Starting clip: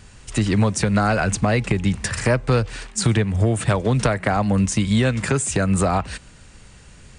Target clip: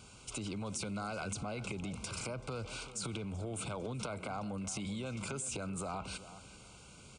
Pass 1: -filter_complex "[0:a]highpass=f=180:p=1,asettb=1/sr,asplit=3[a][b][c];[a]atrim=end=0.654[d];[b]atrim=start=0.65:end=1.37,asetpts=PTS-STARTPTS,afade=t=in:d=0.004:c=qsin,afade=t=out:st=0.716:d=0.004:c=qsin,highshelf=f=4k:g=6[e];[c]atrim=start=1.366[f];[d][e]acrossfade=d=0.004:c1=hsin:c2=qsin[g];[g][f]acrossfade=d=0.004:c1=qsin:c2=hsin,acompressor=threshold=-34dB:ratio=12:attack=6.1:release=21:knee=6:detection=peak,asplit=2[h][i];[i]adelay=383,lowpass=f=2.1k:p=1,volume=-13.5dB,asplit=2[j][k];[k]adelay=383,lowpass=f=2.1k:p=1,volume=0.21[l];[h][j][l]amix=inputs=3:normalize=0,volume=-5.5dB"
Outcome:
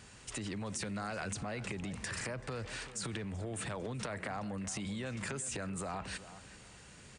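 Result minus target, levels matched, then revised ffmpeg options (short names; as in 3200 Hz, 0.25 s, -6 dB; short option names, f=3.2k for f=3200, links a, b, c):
2000 Hz band +3.5 dB
-filter_complex "[0:a]highpass=f=180:p=1,asettb=1/sr,asplit=3[a][b][c];[a]atrim=end=0.654[d];[b]atrim=start=0.65:end=1.37,asetpts=PTS-STARTPTS,afade=t=in:d=0.004:c=qsin,afade=t=out:st=0.716:d=0.004:c=qsin,highshelf=f=4k:g=6[e];[c]atrim=start=1.366[f];[d][e]acrossfade=d=0.004:c1=hsin:c2=qsin[g];[g][f]acrossfade=d=0.004:c1=qsin:c2=hsin,acompressor=threshold=-34dB:ratio=12:attack=6.1:release=21:knee=6:detection=peak,asuperstop=centerf=1800:order=8:qfactor=3.1,asplit=2[h][i];[i]adelay=383,lowpass=f=2.1k:p=1,volume=-13.5dB,asplit=2[j][k];[k]adelay=383,lowpass=f=2.1k:p=1,volume=0.21[l];[h][j][l]amix=inputs=3:normalize=0,volume=-5.5dB"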